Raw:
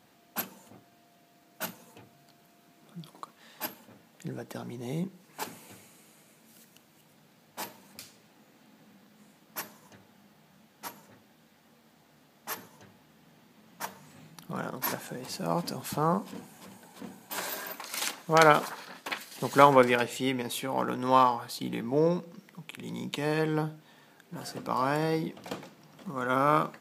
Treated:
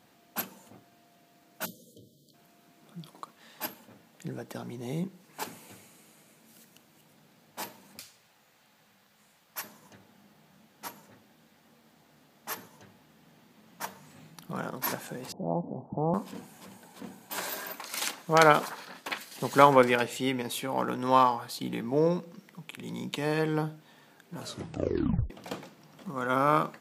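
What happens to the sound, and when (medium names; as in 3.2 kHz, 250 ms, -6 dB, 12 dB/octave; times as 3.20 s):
1.66–2.34 s: spectral selection erased 630–3000 Hz
8.00–9.64 s: peaking EQ 260 Hz -14 dB 1.7 oct
15.32–16.14 s: steep low-pass 870 Hz 48 dB/octave
24.35 s: tape stop 0.95 s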